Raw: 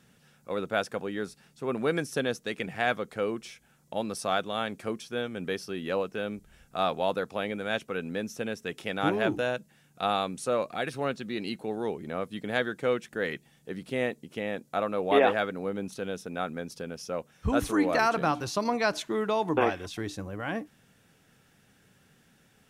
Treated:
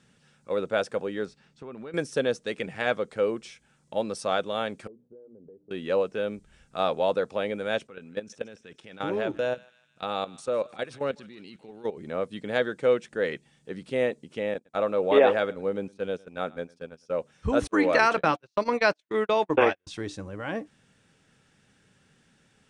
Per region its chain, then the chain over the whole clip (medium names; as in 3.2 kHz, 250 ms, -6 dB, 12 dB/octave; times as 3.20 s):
1.25–1.94 s: compression 10:1, threshold -36 dBFS + distance through air 87 m
4.87–5.71 s: hum notches 60/120/180/240/300 Hz + compression 12:1, threshold -39 dBFS + four-pole ladder low-pass 560 Hz, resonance 45%
7.87–11.97 s: low-pass 10 kHz + level held to a coarse grid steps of 15 dB + thinning echo 154 ms, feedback 59%, high-pass 1.2 kHz, level -19 dB
14.54–17.10 s: gate -37 dBFS, range -19 dB + delay 108 ms -22.5 dB
17.67–19.87 s: high-pass 53 Hz + gate -30 dBFS, range -46 dB + peaking EQ 2.2 kHz +7 dB 1.7 oct
whole clip: Chebyshev low-pass 9.1 kHz, order 4; band-stop 710 Hz, Q 12; dynamic bell 530 Hz, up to +7 dB, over -42 dBFS, Q 1.5